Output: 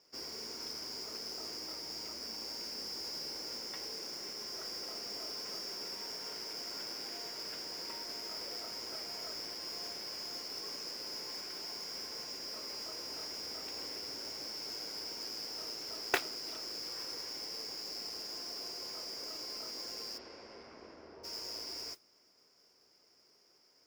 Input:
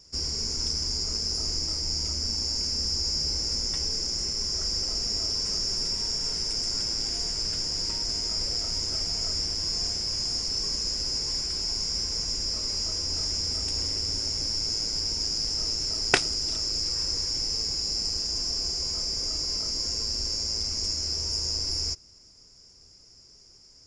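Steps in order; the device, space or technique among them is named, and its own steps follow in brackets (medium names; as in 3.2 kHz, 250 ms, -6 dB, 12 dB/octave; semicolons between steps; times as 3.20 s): carbon microphone (band-pass 380–2900 Hz; saturation -15.5 dBFS, distortion -15 dB; modulation noise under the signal 13 dB); 20.17–21.23 s: low-pass 2.9 kHz -> 1.2 kHz 12 dB/octave; trim -3 dB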